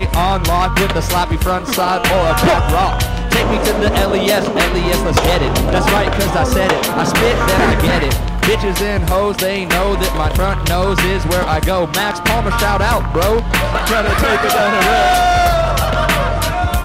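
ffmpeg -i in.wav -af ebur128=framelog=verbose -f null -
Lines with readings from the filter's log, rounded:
Integrated loudness:
  I:         -14.4 LUFS
  Threshold: -24.4 LUFS
Loudness range:
  LRA:         2.1 LU
  Threshold: -34.4 LUFS
  LRA low:   -15.5 LUFS
  LRA high:  -13.4 LUFS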